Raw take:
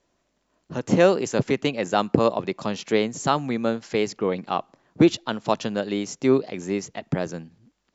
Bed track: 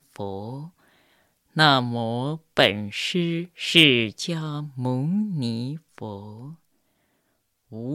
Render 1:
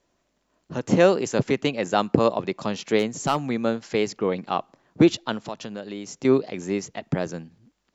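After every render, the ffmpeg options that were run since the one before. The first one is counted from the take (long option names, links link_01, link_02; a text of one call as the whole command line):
ffmpeg -i in.wav -filter_complex "[0:a]asettb=1/sr,asplit=3[link_01][link_02][link_03];[link_01]atrim=end=2.994[link_04];[link_02]atrim=start=2.99:end=3.54,asetpts=PTS-STARTPTS,afade=type=in:duration=0.004:curve=qsin,afade=type=out:start_time=0.546:duration=0.004:curve=qsin,asoftclip=type=hard:threshold=-13.5dB[link_05];[link_03]atrim=start=3.536[link_06];[link_04][link_05]acrossfade=duration=0.004:curve1=hsin:curve2=qsin[link_07];[link_07][link_06]acrossfade=duration=0.004:curve1=qsin:curve2=hsin,asettb=1/sr,asplit=3[link_08][link_09][link_10];[link_08]atrim=end=5.414[link_11];[link_09]atrim=start=5.41:end=6.25,asetpts=PTS-STARTPTS,afade=type=in:duration=0.004:curve=qsin,afade=type=out:start_time=0.836:duration=0.004:curve=qsin,acompressor=threshold=-36dB:ratio=2:attack=3.2:release=140:knee=1:detection=peak[link_12];[link_10]atrim=start=6.246[link_13];[link_11][link_12]acrossfade=duration=0.004:curve1=hsin:curve2=qsin[link_14];[link_14][link_13]acrossfade=duration=0.004:curve1=qsin:curve2=hsin" out.wav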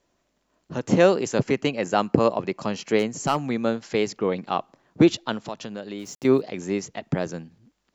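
ffmpeg -i in.wav -filter_complex "[0:a]asettb=1/sr,asplit=3[link_01][link_02][link_03];[link_01]atrim=end=1.404[link_04];[link_02]atrim=start=1.4:end=3.45,asetpts=PTS-STARTPTS,afade=type=in:duration=0.004:curve=qsin,afade=type=out:start_time=2.046:duration=0.004:curve=qsin,bandreject=frequency=3600:width=7.3[link_05];[link_03]atrim=start=3.446[link_06];[link_04][link_05]acrossfade=duration=0.004:curve1=hsin:curve2=qsin[link_07];[link_07][link_06]acrossfade=duration=0.004:curve1=qsin:curve2=hsin,asplit=3[link_08][link_09][link_10];[link_08]afade=type=out:start_time=5.98:duration=0.02[link_11];[link_09]aeval=exprs='val(0)*gte(abs(val(0)),0.00501)':channel_layout=same,afade=type=in:start_time=5.98:duration=0.02,afade=type=out:start_time=6.4:duration=0.02[link_12];[link_10]afade=type=in:start_time=6.4:duration=0.02[link_13];[link_11][link_12][link_13]amix=inputs=3:normalize=0" out.wav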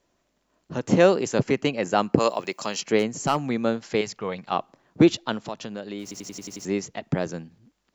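ffmpeg -i in.wav -filter_complex "[0:a]asplit=3[link_01][link_02][link_03];[link_01]afade=type=out:start_time=2.18:duration=0.02[link_04];[link_02]aemphasis=mode=production:type=riaa,afade=type=in:start_time=2.18:duration=0.02,afade=type=out:start_time=2.8:duration=0.02[link_05];[link_03]afade=type=in:start_time=2.8:duration=0.02[link_06];[link_04][link_05][link_06]amix=inputs=3:normalize=0,asettb=1/sr,asplit=3[link_07][link_08][link_09];[link_07]atrim=end=4.014[link_10];[link_08]atrim=start=4.01:end=4.52,asetpts=PTS-STARTPTS,afade=type=in:duration=0.004:curve=qsin,afade=type=out:start_time=0.506:duration=0.004:curve=qsin,equalizer=frequency=310:width_type=o:width=1.3:gain=-12[link_11];[link_09]atrim=start=4.516[link_12];[link_10][link_11]acrossfade=duration=0.004:curve1=hsin:curve2=qsin[link_13];[link_13][link_12]acrossfade=duration=0.004:curve1=qsin:curve2=hsin,asplit=8[link_14][link_15][link_16][link_17][link_18][link_19][link_20][link_21];[link_14]atrim=end=6.112[link_22];[link_15]atrim=start=6.018:end=6.112[link_23];[link_16]atrim=start=6.018:end=6.112[link_24];[link_17]atrim=start=6.018:end=6.112[link_25];[link_18]atrim=start=6.018:end=6.112[link_26];[link_19]atrim=start=6.018:end=6.112[link_27];[link_20]atrim=start=6.018:end=6.112[link_28];[link_21]atrim=start=6.648[link_29];[link_22][link_23]acrossfade=duration=0.004:curve1=hsin:curve2=hsin[link_30];[link_30][link_24]acrossfade=duration=0.004:curve1=hsin:curve2=hsin[link_31];[link_31][link_25]acrossfade=duration=0.004:curve1=hsin:curve2=hsin[link_32];[link_32][link_26]acrossfade=duration=0.004:curve1=hsin:curve2=hsin[link_33];[link_33][link_27]acrossfade=duration=0.004:curve1=hsin:curve2=hsin[link_34];[link_34][link_28]acrossfade=duration=0.004:curve1=hsin:curve2=hsin[link_35];[link_35][link_29]acrossfade=duration=0.004:curve1=hsin:curve2=hsin" out.wav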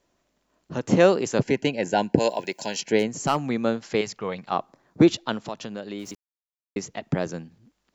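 ffmpeg -i in.wav -filter_complex "[0:a]asettb=1/sr,asplit=3[link_01][link_02][link_03];[link_01]atrim=end=1.434[link_04];[link_02]atrim=start=1.43:end=3.08,asetpts=PTS-STARTPTS,afade=type=in:duration=0.004:curve=qsin,afade=type=out:start_time=1.646:duration=0.004:curve=qsin,asuperstop=centerf=1200:order=20:qfactor=3.2[link_05];[link_03]atrim=start=3.076[link_06];[link_04][link_05]acrossfade=duration=0.004:curve1=hsin:curve2=qsin[link_07];[link_07][link_06]acrossfade=duration=0.004:curve1=qsin:curve2=hsin,asettb=1/sr,asplit=3[link_08][link_09][link_10];[link_08]atrim=end=4.494[link_11];[link_09]atrim=start=4.49:end=5.08,asetpts=PTS-STARTPTS,afade=type=in:duration=0.004:curve=qsin,afade=type=out:start_time=0.586:duration=0.004:curve=qsin,equalizer=frequency=2900:width_type=o:width=0.38:gain=-6.5[link_12];[link_10]atrim=start=5.076[link_13];[link_11][link_12]acrossfade=duration=0.004:curve1=hsin:curve2=qsin[link_14];[link_14][link_13]acrossfade=duration=0.004:curve1=qsin:curve2=hsin,asplit=3[link_15][link_16][link_17];[link_15]atrim=end=6.15,asetpts=PTS-STARTPTS,afade=type=out:start_time=6.146:duration=0.004:curve=hsin[link_18];[link_16]atrim=start=6.15:end=6.76,asetpts=PTS-STARTPTS,volume=0[link_19];[link_17]atrim=start=6.76,asetpts=PTS-STARTPTS,afade=type=in:duration=0.004:curve=hsin[link_20];[link_18][link_19][link_20]concat=n=3:v=0:a=1" out.wav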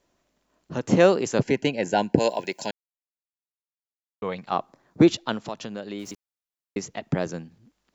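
ffmpeg -i in.wav -filter_complex "[0:a]asplit=3[link_01][link_02][link_03];[link_01]atrim=end=2.71,asetpts=PTS-STARTPTS,afade=type=out:start_time=2.706:duration=0.004:curve=hsin[link_04];[link_02]atrim=start=2.71:end=4.22,asetpts=PTS-STARTPTS,volume=0[link_05];[link_03]atrim=start=4.22,asetpts=PTS-STARTPTS,afade=type=in:duration=0.004:curve=hsin[link_06];[link_04][link_05][link_06]concat=n=3:v=0:a=1" out.wav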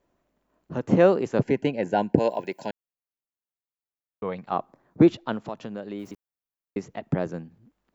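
ffmpeg -i in.wav -filter_complex "[0:a]acrossover=split=5600[link_01][link_02];[link_02]acompressor=threshold=-46dB:ratio=4:attack=1:release=60[link_03];[link_01][link_03]amix=inputs=2:normalize=0,equalizer=frequency=5600:width_type=o:width=2.3:gain=-12" out.wav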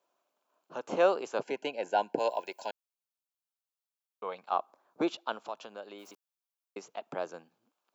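ffmpeg -i in.wav -af "highpass=730,equalizer=frequency=1900:width=4.4:gain=-13.5" out.wav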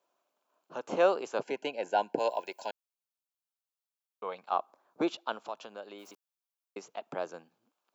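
ffmpeg -i in.wav -af anull out.wav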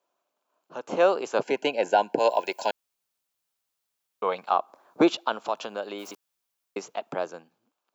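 ffmpeg -i in.wav -af "dynaudnorm=framelen=230:gausssize=11:maxgain=12dB,alimiter=limit=-9.5dB:level=0:latency=1:release=236" out.wav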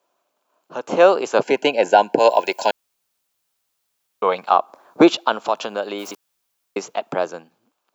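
ffmpeg -i in.wav -af "volume=8dB" out.wav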